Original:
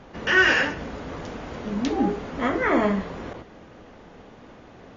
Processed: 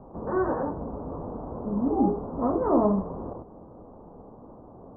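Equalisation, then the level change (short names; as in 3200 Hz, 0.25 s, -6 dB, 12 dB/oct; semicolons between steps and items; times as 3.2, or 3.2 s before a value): steep low-pass 1100 Hz 48 dB/oct; 0.0 dB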